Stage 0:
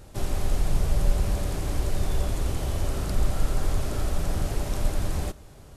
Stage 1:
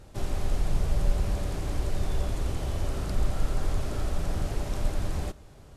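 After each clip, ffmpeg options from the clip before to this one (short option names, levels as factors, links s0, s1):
-af "highshelf=f=9800:g=-9,volume=0.75"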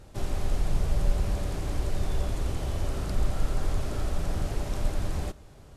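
-af anull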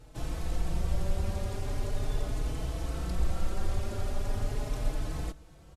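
-filter_complex "[0:a]asplit=2[s0][s1];[s1]adelay=4.2,afreqshift=0.4[s2];[s0][s2]amix=inputs=2:normalize=1"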